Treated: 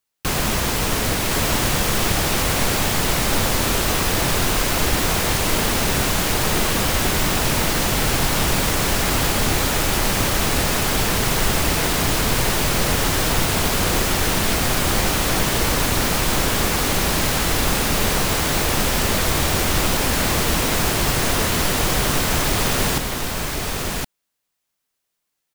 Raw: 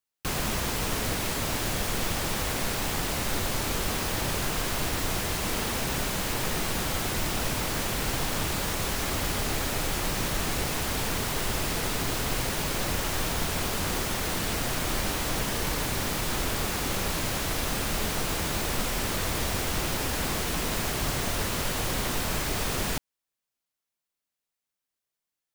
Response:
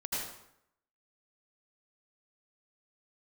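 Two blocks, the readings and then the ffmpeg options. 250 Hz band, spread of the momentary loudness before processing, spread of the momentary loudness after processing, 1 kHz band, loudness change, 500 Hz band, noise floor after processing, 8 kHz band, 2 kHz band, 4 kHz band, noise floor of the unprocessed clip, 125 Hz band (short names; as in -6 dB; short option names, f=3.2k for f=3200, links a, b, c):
+9.5 dB, 0 LU, 1 LU, +9.5 dB, +9.5 dB, +9.5 dB, -78 dBFS, +9.5 dB, +9.5 dB, +9.5 dB, under -85 dBFS, +9.5 dB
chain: -af "aecho=1:1:1066:0.631,volume=8dB"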